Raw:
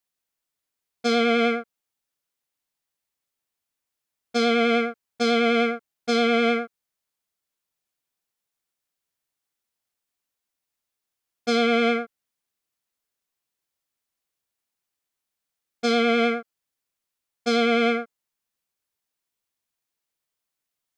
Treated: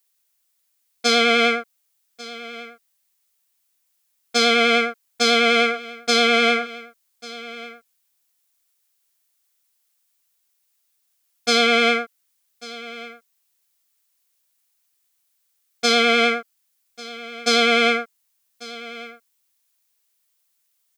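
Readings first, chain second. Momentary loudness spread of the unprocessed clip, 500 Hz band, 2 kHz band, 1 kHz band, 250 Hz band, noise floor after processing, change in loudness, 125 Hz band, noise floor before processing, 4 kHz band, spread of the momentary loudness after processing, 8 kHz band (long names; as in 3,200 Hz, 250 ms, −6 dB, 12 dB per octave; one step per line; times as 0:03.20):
11 LU, +1.5 dB, +7.5 dB, +4.5 dB, −2.0 dB, −70 dBFS, +4.5 dB, can't be measured, −85 dBFS, +10.0 dB, 21 LU, +12.5 dB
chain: spectral tilt +3 dB per octave
on a send: single-tap delay 1,144 ms −18.5 dB
on the sum: level +4.5 dB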